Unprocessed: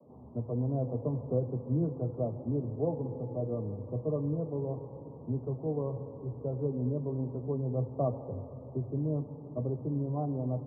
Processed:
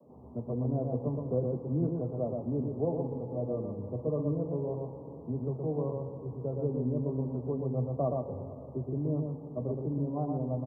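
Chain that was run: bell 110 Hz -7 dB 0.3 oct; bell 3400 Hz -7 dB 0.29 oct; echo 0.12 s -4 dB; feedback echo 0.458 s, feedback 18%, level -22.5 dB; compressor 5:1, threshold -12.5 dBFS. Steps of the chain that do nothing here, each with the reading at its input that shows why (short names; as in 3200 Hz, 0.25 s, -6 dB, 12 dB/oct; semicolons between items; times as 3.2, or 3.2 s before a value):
bell 3400 Hz: input band ends at 910 Hz; compressor, threshold -12.5 dBFS: input peak -17.5 dBFS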